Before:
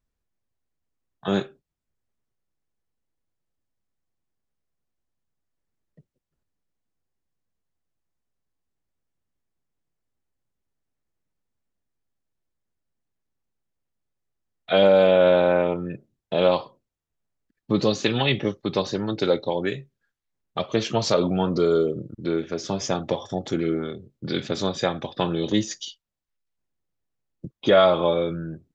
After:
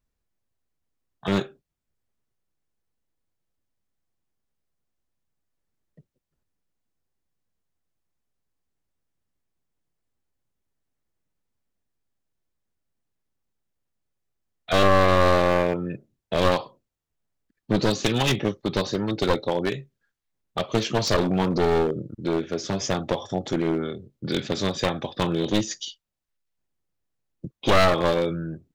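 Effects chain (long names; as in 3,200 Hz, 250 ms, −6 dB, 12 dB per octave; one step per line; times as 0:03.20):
wavefolder on the positive side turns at −20 dBFS
level +1 dB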